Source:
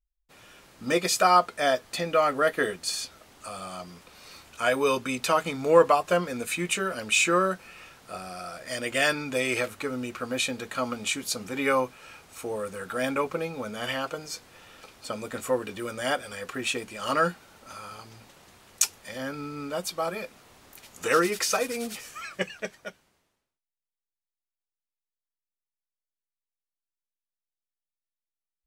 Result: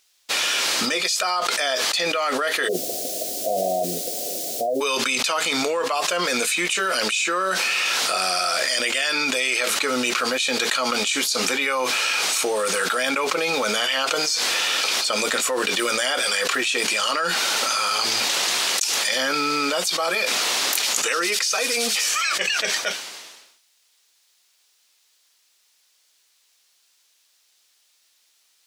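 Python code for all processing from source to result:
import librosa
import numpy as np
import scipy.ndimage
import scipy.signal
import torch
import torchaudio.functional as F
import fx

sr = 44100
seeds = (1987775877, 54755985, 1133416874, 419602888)

y = fx.cheby1_lowpass(x, sr, hz=740.0, order=10, at=(2.67, 4.8), fade=0.02)
y = fx.dmg_noise_colour(y, sr, seeds[0], colour='violet', level_db=-59.0, at=(2.67, 4.8), fade=0.02)
y = scipy.signal.sosfilt(scipy.signal.butter(2, 370.0, 'highpass', fs=sr, output='sos'), y)
y = fx.peak_eq(y, sr, hz=4700.0, db=13.5, octaves=2.5)
y = fx.env_flatten(y, sr, amount_pct=100)
y = y * librosa.db_to_amplitude(-14.5)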